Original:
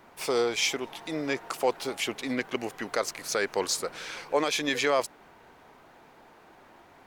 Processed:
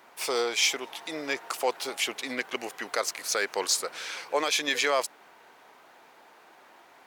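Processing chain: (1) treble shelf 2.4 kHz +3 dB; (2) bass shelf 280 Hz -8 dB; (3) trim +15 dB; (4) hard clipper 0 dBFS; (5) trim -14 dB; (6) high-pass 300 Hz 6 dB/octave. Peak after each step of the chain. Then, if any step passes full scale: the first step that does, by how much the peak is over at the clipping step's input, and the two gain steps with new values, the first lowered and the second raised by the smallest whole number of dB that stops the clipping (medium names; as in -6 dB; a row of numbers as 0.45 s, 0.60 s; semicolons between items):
-12.0 dBFS, -12.0 dBFS, +3.0 dBFS, 0.0 dBFS, -14.0 dBFS, -13.5 dBFS; step 3, 3.0 dB; step 3 +12 dB, step 5 -11 dB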